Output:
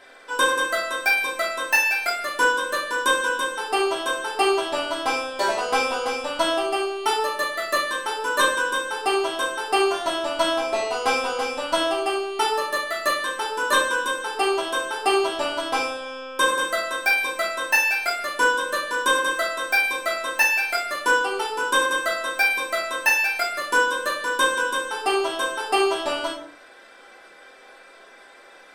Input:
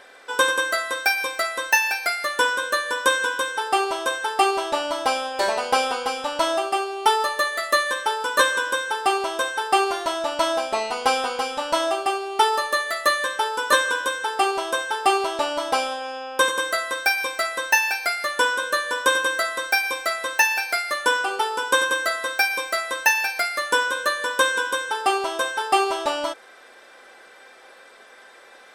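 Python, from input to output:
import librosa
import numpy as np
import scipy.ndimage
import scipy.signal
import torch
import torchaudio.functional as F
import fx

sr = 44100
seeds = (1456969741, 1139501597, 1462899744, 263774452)

y = fx.room_shoebox(x, sr, seeds[0], volume_m3=360.0, walls='furnished', distance_m=3.0)
y = y * 10.0 ** (-5.0 / 20.0)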